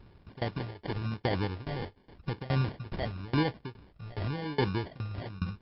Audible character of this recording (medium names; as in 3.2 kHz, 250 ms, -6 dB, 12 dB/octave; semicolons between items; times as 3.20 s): phasing stages 2, 0.92 Hz, lowest notch 220–2500 Hz; aliases and images of a low sample rate 1.3 kHz, jitter 0%; tremolo saw down 2.4 Hz, depth 95%; MP3